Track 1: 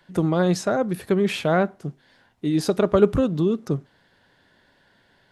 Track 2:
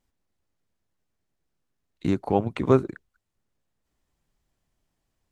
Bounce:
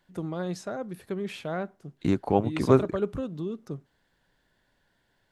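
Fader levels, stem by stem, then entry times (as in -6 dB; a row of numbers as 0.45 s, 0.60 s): -12.0 dB, -0.5 dB; 0.00 s, 0.00 s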